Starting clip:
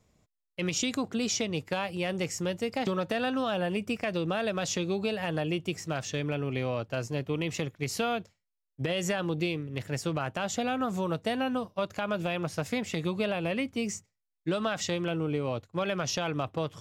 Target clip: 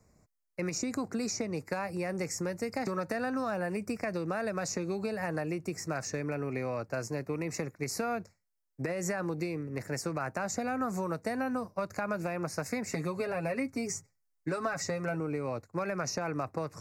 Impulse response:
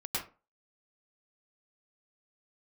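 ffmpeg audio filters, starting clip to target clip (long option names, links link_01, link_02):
-filter_complex "[0:a]asettb=1/sr,asplit=3[link_01][link_02][link_03];[link_01]atrim=end=12.864[link_04];[link_02]atrim=start=12.86:end=15.2,asetpts=PTS-STARTPTS,afade=type=in:duration=0.004:curve=qsin,afade=type=out:start_time=2.336:duration=0.004:curve=qsin,aecho=1:1:7.3:0.69,atrim=end_sample=103194[link_05];[link_03]atrim=start=15.196[link_06];[link_04][link_05]acrossfade=duration=0.004:curve1=hsin:curve2=qsin[link_07];[link_07][link_06]acrossfade=duration=0.004:curve1=qsin:curve2=hsin,acrossover=split=180|1400[link_08][link_09][link_10];[link_08]acompressor=threshold=-48dB:ratio=4[link_11];[link_09]acompressor=threshold=-35dB:ratio=4[link_12];[link_10]acompressor=threshold=-36dB:ratio=4[link_13];[link_11][link_12][link_13]amix=inputs=3:normalize=0,asuperstop=centerf=3200:order=4:qfactor=1.3,volume=2.5dB"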